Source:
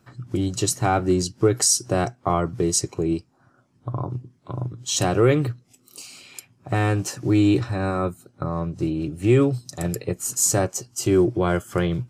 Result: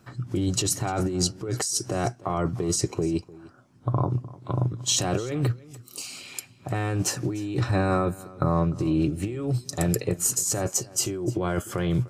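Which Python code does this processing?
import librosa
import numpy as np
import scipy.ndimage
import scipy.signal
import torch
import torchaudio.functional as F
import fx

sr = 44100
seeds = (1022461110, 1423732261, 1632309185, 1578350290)

p1 = fx.over_compress(x, sr, threshold_db=-25.0, ratio=-1.0)
y = p1 + fx.echo_single(p1, sr, ms=300, db=-20.5, dry=0)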